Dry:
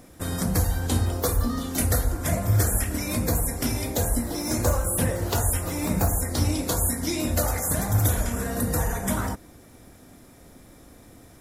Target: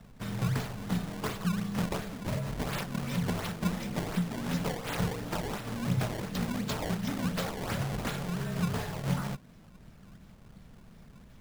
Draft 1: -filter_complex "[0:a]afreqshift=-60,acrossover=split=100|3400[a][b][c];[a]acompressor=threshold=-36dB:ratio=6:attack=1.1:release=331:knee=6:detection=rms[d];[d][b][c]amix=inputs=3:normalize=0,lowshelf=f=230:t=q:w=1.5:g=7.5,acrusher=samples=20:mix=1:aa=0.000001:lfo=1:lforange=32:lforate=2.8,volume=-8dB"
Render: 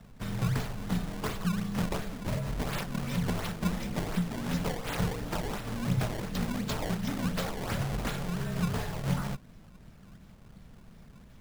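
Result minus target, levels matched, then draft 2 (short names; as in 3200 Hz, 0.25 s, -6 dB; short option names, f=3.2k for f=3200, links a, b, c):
compressor: peak gain reduction -9.5 dB
-filter_complex "[0:a]afreqshift=-60,acrossover=split=100|3400[a][b][c];[a]acompressor=threshold=-47.5dB:ratio=6:attack=1.1:release=331:knee=6:detection=rms[d];[d][b][c]amix=inputs=3:normalize=0,lowshelf=f=230:t=q:w=1.5:g=7.5,acrusher=samples=20:mix=1:aa=0.000001:lfo=1:lforange=32:lforate=2.8,volume=-8dB"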